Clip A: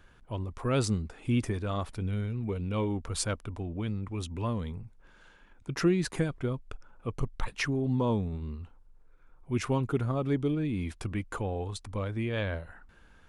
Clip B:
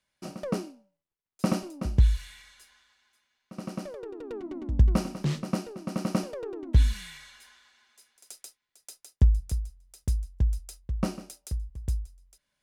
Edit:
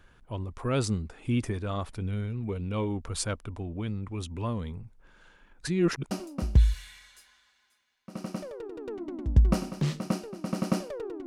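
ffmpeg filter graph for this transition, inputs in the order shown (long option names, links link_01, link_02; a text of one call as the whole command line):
ffmpeg -i cue0.wav -i cue1.wav -filter_complex "[0:a]apad=whole_dur=11.26,atrim=end=11.26,asplit=2[link_01][link_02];[link_01]atrim=end=5.612[link_03];[link_02]atrim=start=5.608:end=6.112,asetpts=PTS-STARTPTS,areverse[link_04];[1:a]atrim=start=1.538:end=6.69[link_05];[link_03][link_04]acrossfade=duration=0.004:curve1=hsin:curve2=hsin[link_06];[link_06][link_05]acrossfade=duration=0.004:curve1=hsin:curve2=hsin" out.wav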